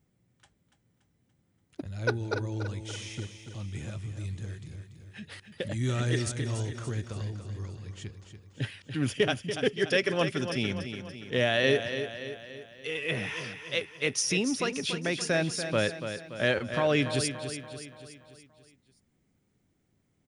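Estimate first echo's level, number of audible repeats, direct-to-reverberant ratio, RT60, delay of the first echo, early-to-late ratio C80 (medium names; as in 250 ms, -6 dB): -9.0 dB, 5, no reverb, no reverb, 287 ms, no reverb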